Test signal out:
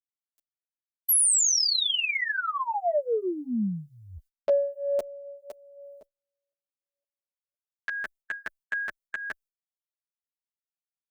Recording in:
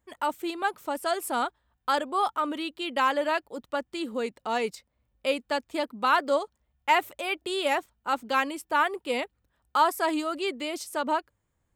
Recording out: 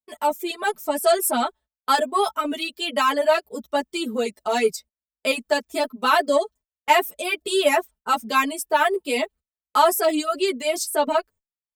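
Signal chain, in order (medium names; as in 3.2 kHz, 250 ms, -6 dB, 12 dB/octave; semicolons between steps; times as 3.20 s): gate -50 dBFS, range -28 dB; reverb removal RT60 1 s; treble shelf 4.2 kHz +11.5 dB; comb 4.6 ms, depth 71%; level rider gain up to 3 dB; small resonant body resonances 340/590 Hz, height 8 dB, ringing for 25 ms; in parallel at -11 dB: saturation -15.5 dBFS; on the sum: endless flanger 9.2 ms -1.5 Hz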